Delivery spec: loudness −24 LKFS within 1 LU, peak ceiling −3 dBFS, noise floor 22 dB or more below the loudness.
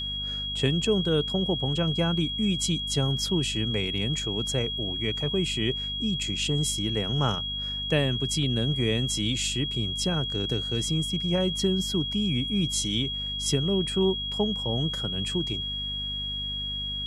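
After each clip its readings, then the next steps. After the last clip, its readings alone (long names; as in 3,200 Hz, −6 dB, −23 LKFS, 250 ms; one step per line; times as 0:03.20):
mains hum 50 Hz; hum harmonics up to 250 Hz; level of the hum −37 dBFS; interfering tone 3,300 Hz; level of the tone −30 dBFS; integrated loudness −26.5 LKFS; sample peak −10.5 dBFS; target loudness −24.0 LKFS
→ mains-hum notches 50/100/150/200/250 Hz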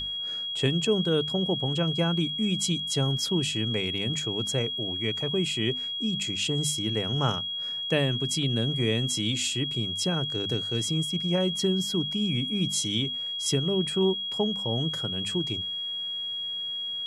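mains hum none found; interfering tone 3,300 Hz; level of the tone −30 dBFS
→ notch filter 3,300 Hz, Q 30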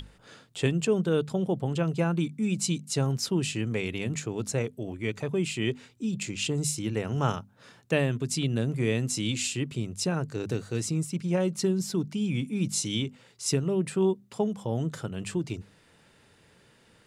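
interfering tone none found; integrated loudness −29.0 LKFS; sample peak −11.5 dBFS; target loudness −24.0 LKFS
→ level +5 dB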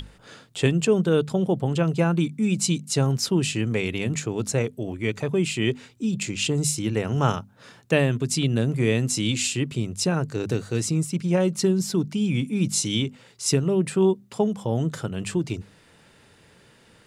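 integrated loudness −24.0 LKFS; sample peak −6.5 dBFS; background noise floor −55 dBFS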